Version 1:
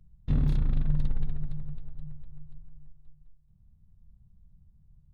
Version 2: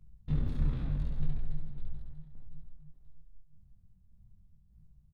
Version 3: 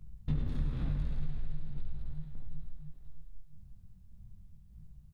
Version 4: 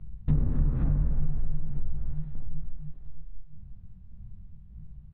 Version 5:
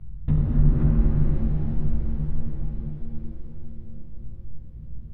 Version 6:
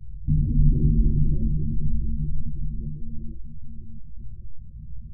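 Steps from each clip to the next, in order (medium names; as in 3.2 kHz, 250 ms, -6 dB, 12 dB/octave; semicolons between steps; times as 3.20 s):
tremolo saw down 1.7 Hz, depth 65%; on a send: reverse bouncing-ball echo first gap 70 ms, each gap 1.3×, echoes 5; on the sum: detune thickener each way 36 cents; trim +2 dB
compression, threshold -35 dBFS, peak gain reduction 12.5 dB; feedback echo behind a high-pass 109 ms, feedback 76%, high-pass 1.4 kHz, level -7 dB; trim +7 dB
low-pass that closes with the level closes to 1.3 kHz, closed at -27.5 dBFS; distance through air 440 m; trim +8 dB
pitch-shifted reverb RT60 3.9 s, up +7 st, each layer -8 dB, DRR -1 dB; trim +2 dB
spectral gate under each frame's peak -25 dB strong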